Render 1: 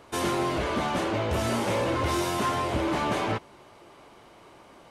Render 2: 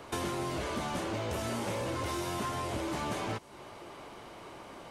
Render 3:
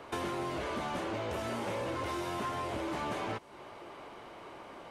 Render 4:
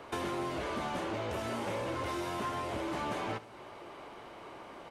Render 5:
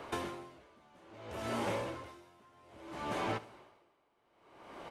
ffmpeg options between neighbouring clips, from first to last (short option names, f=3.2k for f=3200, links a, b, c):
-filter_complex "[0:a]acrossover=split=180|5200[a][b][c];[a]acompressor=threshold=-46dB:ratio=4[d];[b]acompressor=threshold=-40dB:ratio=4[e];[c]acompressor=threshold=-52dB:ratio=4[f];[d][e][f]amix=inputs=3:normalize=0,volume=4dB"
-af "bass=f=250:g=-5,treble=f=4k:g=-8"
-af "aecho=1:1:72|144|216|288|360:0.141|0.0735|0.0382|0.0199|0.0103"
-af "aeval=exprs='val(0)*pow(10,-29*(0.5-0.5*cos(2*PI*0.61*n/s))/20)':c=same,volume=1.5dB"